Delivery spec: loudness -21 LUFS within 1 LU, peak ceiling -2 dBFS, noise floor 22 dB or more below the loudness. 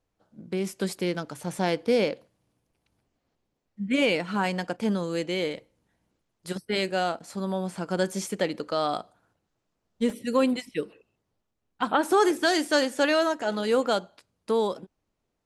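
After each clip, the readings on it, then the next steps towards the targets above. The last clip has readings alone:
dropouts 1; longest dropout 1.2 ms; loudness -27.0 LUFS; peak -10.5 dBFS; loudness target -21.0 LUFS
-> interpolate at 10.1, 1.2 ms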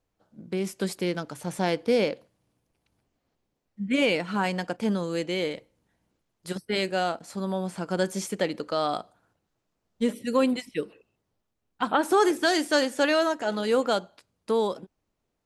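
dropouts 0; loudness -27.0 LUFS; peak -10.5 dBFS; loudness target -21.0 LUFS
-> gain +6 dB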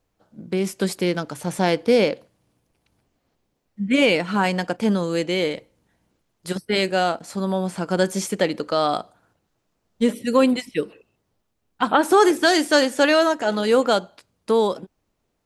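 loudness -21.0 LUFS; peak -4.5 dBFS; noise floor -74 dBFS

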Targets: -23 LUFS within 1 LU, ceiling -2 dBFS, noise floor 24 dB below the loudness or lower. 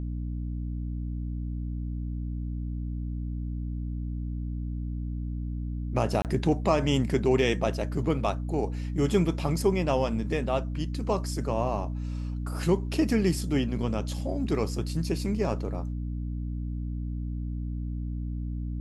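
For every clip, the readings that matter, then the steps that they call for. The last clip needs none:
dropouts 1; longest dropout 28 ms; hum 60 Hz; harmonics up to 300 Hz; hum level -30 dBFS; loudness -30.0 LUFS; peak -10.5 dBFS; loudness target -23.0 LUFS
-> interpolate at 6.22, 28 ms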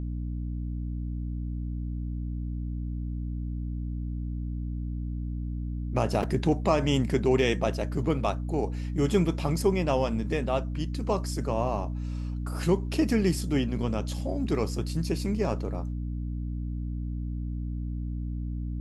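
dropouts 0; hum 60 Hz; harmonics up to 300 Hz; hum level -30 dBFS
-> notches 60/120/180/240/300 Hz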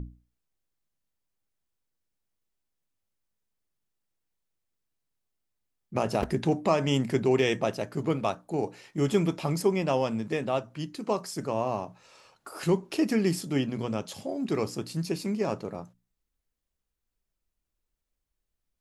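hum none; loudness -29.0 LUFS; peak -10.5 dBFS; loudness target -23.0 LUFS
-> gain +6 dB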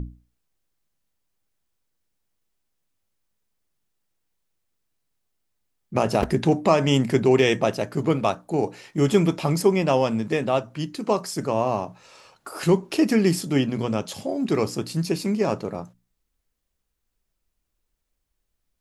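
loudness -23.0 LUFS; peak -4.5 dBFS; noise floor -78 dBFS

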